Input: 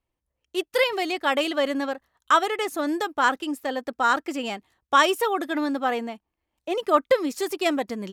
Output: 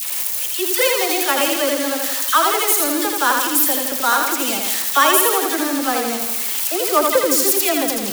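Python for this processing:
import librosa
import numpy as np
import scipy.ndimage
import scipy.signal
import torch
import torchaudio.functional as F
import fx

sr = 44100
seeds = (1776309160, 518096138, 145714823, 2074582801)

p1 = x + 0.5 * 10.0 ** (-14.5 / 20.0) * np.diff(np.sign(x), prepend=np.sign(x[:1]))
p2 = fx.dispersion(p1, sr, late='lows', ms=44.0, hz=1400.0)
p3 = p2 + fx.echo_feedback(p2, sr, ms=82, feedback_pct=57, wet_db=-4.0, dry=0)
y = p3 * 10.0 ** (2.5 / 20.0)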